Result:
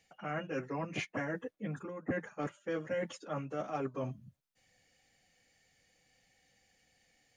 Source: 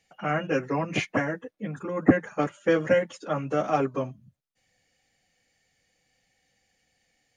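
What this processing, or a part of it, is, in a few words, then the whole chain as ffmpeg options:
compression on the reversed sound: -af "areverse,acompressor=threshold=-36dB:ratio=4,areverse"

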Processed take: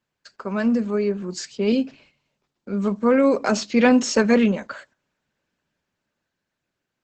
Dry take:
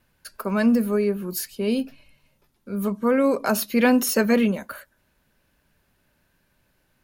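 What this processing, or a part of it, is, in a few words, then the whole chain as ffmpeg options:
video call: -filter_complex "[0:a]asettb=1/sr,asplit=3[link_01][link_02][link_03];[link_01]atrim=end=1.724[link_04];[link_02]atrim=start=1.72:end=3.84,asetpts=PTS-STARTPTS,afade=type=in:duration=0.004:curve=qsin,afade=type=out:start_time=2.116:duration=0.004:curve=qsin,adynamicequalizer=threshold=0.0112:dfrequency=1200:dqfactor=1.4:tfrequency=1200:tqfactor=1.4:attack=5:release=100:ratio=0.375:range=2:mode=cutabove:tftype=bell[link_05];[link_03]atrim=start=3.836[link_06];[link_04][link_05]acrossfade=duration=0.004:curve1=hsin:curve2=qsin[link_07];[link_07][link_06]acrossfade=duration=0.004:curve1=qsin:curve2=hsin,highpass=120,dynaudnorm=framelen=230:gausssize=13:maxgain=12.5dB,agate=range=-10dB:threshold=-49dB:ratio=16:detection=peak,volume=-2dB" -ar 48000 -c:a libopus -b:a 12k

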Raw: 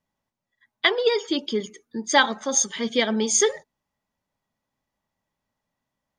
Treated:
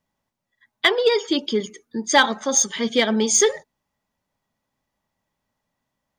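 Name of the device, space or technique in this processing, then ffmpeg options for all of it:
parallel distortion: -filter_complex "[0:a]asplit=2[link_01][link_02];[link_02]asoftclip=type=hard:threshold=-16dB,volume=-6.5dB[link_03];[link_01][link_03]amix=inputs=2:normalize=0"

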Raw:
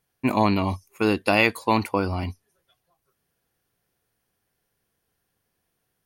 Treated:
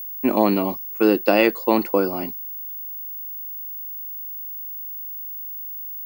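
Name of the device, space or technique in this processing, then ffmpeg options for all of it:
old television with a line whistle: -af "highpass=frequency=180:width=0.5412,highpass=frequency=180:width=1.3066,equalizer=frequency=350:width_type=q:width=4:gain=6,equalizer=frequency=520:width_type=q:width=4:gain=6,equalizer=frequency=1000:width_type=q:width=4:gain=-5,equalizer=frequency=2300:width_type=q:width=4:gain=-7,equalizer=frequency=3700:width_type=q:width=4:gain=-7,equalizer=frequency=6200:width_type=q:width=4:gain=-5,lowpass=frequency=7200:width=0.5412,lowpass=frequency=7200:width=1.3066,aeval=exprs='val(0)+0.0251*sin(2*PI*15625*n/s)':channel_layout=same,volume=2dB"

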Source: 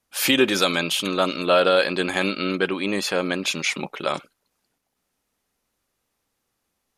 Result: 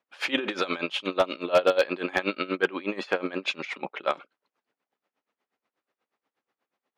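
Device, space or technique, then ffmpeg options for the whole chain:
helicopter radio: -filter_complex "[0:a]highpass=310,lowpass=2600,aeval=exprs='val(0)*pow(10,-20*(0.5-0.5*cos(2*PI*8.3*n/s))/20)':channel_layout=same,asoftclip=type=hard:threshold=-13.5dB,asettb=1/sr,asplit=3[link_01][link_02][link_03];[link_01]atrim=end=1.004[link_04];[link_02]atrim=start=1:end=1.84,asetpts=PTS-STARTPTS,afade=type=in:duration=0.004:curve=qsin,afade=type=out:start_time=0.836:duration=0.004:curve=qsin,equalizer=frequency=1500:width_type=o:width=0.62:gain=-5.5[link_05];[link_03]atrim=start=1.836[link_06];[link_04][link_05]acrossfade=duration=0.004:curve1=hsin:curve2=qsin[link_07];[link_07][link_06]acrossfade=duration=0.004:curve1=qsin:curve2=hsin,volume=3dB"

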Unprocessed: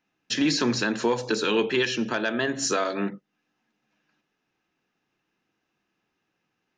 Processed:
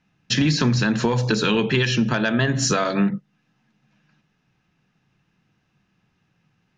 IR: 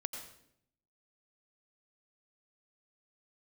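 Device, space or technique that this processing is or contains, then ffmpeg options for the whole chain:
jukebox: -af "lowpass=7500,lowshelf=frequency=220:width_type=q:width=1.5:gain=11.5,acompressor=threshold=-22dB:ratio=6,volume=6.5dB"

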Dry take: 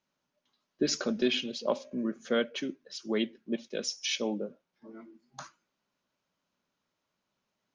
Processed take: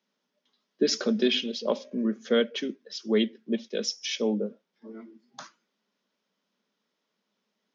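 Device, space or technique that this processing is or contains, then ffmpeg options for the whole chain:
television speaker: -filter_complex "[0:a]asettb=1/sr,asplit=3[link_01][link_02][link_03];[link_01]atrim=end=3.914[link_04];[link_02]atrim=start=3.91:end=4.46,asetpts=PTS-STARTPTS,afade=type=in:duration=0.004:curve=qsin,afade=type=out:start_time=0.546:duration=0.004:curve=qsin,equalizer=frequency=3700:width_type=o:width=1.4:gain=-5[link_05];[link_03]atrim=start=4.456[link_06];[link_04][link_05]acrossfade=duration=0.004:curve1=hsin:curve2=qsin[link_07];[link_07][link_06]acrossfade=duration=0.004:curve1=qsin:curve2=hsin,highpass=frequency=180:width=0.5412,highpass=frequency=180:width=1.3066,equalizer=frequency=210:width_type=q:width=4:gain=9,equalizer=frequency=440:width_type=q:width=4:gain=8,equalizer=frequency=1900:width_type=q:width=4:gain=4,equalizer=frequency=3400:width_type=q:width=4:gain=6,equalizer=frequency=5200:width_type=q:width=4:gain=5,lowpass=frequency=7100:width=0.5412,lowpass=frequency=7100:width=1.3066"

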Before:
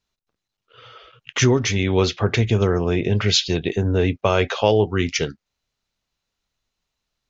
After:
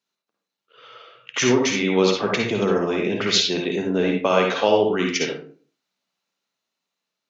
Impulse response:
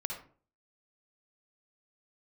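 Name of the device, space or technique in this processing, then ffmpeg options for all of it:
far laptop microphone: -filter_complex "[1:a]atrim=start_sample=2205[link_01];[0:a][link_01]afir=irnorm=-1:irlink=0,highpass=frequency=190:width=0.5412,highpass=frequency=190:width=1.3066,dynaudnorm=framelen=210:gausssize=11:maxgain=3dB,volume=-2dB"

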